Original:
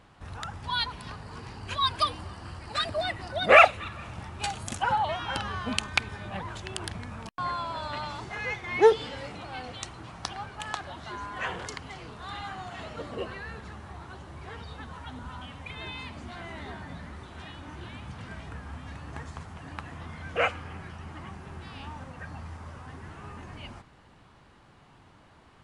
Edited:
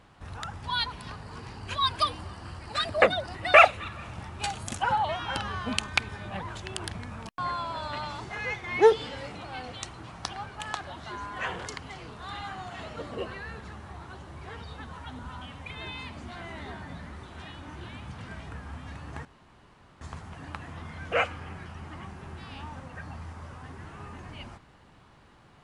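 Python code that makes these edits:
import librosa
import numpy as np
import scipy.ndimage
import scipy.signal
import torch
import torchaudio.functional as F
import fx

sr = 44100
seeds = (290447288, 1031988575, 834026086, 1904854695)

y = fx.edit(x, sr, fx.reverse_span(start_s=3.02, length_s=0.52),
    fx.insert_room_tone(at_s=19.25, length_s=0.76), tone=tone)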